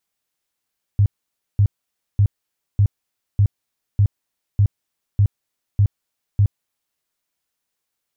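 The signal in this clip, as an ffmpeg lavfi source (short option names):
-f lavfi -i "aevalsrc='0.299*sin(2*PI*101*mod(t,0.6))*lt(mod(t,0.6),7/101)':d=6:s=44100"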